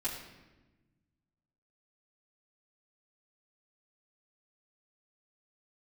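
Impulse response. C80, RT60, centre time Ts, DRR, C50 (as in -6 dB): 6.5 dB, 1.1 s, 43 ms, -10.0 dB, 4.5 dB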